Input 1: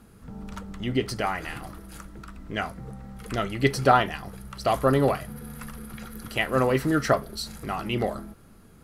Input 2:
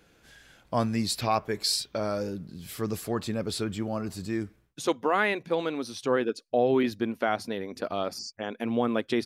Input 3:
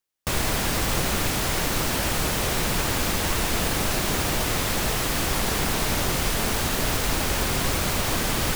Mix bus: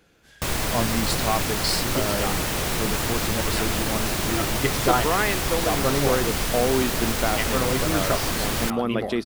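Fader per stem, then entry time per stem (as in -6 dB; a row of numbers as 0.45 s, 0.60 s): -3.5 dB, +1.0 dB, -1.0 dB; 1.00 s, 0.00 s, 0.15 s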